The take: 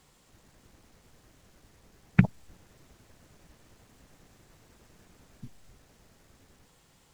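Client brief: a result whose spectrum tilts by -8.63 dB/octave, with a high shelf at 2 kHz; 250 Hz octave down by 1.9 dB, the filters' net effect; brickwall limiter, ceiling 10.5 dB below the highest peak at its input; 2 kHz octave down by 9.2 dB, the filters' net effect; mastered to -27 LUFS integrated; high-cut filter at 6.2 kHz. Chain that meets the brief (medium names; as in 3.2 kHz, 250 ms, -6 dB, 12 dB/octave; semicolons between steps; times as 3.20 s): low-pass 6.2 kHz; peaking EQ 250 Hz -3 dB; treble shelf 2 kHz -9 dB; peaking EQ 2 kHz -6.5 dB; trim +11 dB; peak limiter -5.5 dBFS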